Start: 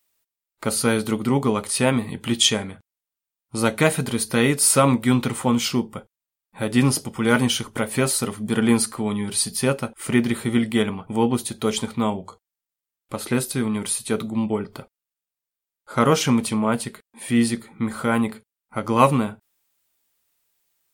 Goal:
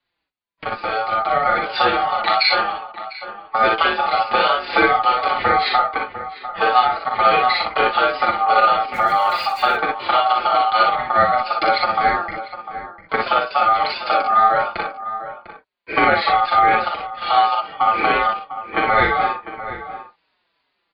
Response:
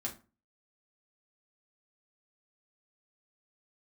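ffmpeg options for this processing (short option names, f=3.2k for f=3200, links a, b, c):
-filter_complex "[0:a]aresample=8000,aresample=44100,acompressor=threshold=-27dB:ratio=5,asplit=2[a][b];[b]aecho=0:1:41|59:0.531|0.668[c];[a][c]amix=inputs=2:normalize=0,asplit=3[d][e][f];[d]afade=t=out:st=8.93:d=0.02[g];[e]aeval=exprs='val(0)*gte(abs(val(0)),0.00447)':c=same,afade=t=in:st=8.93:d=0.02,afade=t=out:st=9.75:d=0.02[h];[f]afade=t=in:st=9.75:d=0.02[i];[g][h][i]amix=inputs=3:normalize=0,aeval=exprs='val(0)*sin(2*PI*1000*n/s)':c=same,asplit=2[j][k];[k]adelay=699.7,volume=-12dB,highshelf=f=4k:g=-15.7[l];[j][l]amix=inputs=2:normalize=0,acrossover=split=240[m][n];[n]dynaudnorm=f=220:g=11:m=9.5dB[o];[m][o]amix=inputs=2:normalize=0,asplit=2[p][q];[q]adelay=5,afreqshift=-2.8[r];[p][r]amix=inputs=2:normalize=1,volume=8dB"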